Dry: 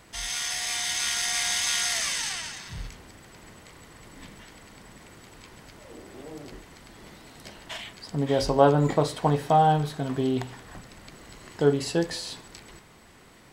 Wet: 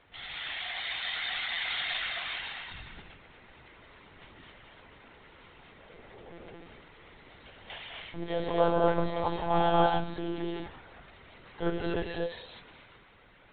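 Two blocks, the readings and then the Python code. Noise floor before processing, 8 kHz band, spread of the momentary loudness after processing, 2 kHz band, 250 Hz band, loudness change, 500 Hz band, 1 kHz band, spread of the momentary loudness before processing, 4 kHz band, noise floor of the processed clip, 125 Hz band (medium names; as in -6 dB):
-53 dBFS, under -40 dB, 22 LU, -2.0 dB, -6.5 dB, -6.0 dB, -5.0 dB, -5.0 dB, 21 LU, -5.5 dB, -57 dBFS, -10.0 dB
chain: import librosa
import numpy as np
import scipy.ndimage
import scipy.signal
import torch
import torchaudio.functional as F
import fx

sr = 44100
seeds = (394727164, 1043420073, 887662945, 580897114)

y = fx.low_shelf(x, sr, hz=360.0, db=-7.0)
y = fx.rev_gated(y, sr, seeds[0], gate_ms=280, shape='rising', drr_db=-1.5)
y = fx.lpc_monotone(y, sr, seeds[1], pitch_hz=170.0, order=16)
y = y * librosa.db_to_amplitude(-6.0)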